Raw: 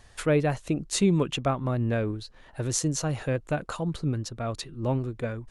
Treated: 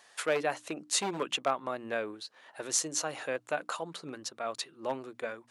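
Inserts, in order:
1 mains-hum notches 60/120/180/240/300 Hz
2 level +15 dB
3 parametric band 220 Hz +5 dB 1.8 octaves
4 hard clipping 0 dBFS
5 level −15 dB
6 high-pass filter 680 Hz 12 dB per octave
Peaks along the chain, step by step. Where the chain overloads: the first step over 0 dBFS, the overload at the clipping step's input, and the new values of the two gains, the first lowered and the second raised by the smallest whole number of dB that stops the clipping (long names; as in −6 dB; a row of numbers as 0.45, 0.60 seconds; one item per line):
−9.0, +6.0, +6.5, 0.0, −15.0, −14.0 dBFS
step 2, 6.5 dB
step 2 +8 dB, step 5 −8 dB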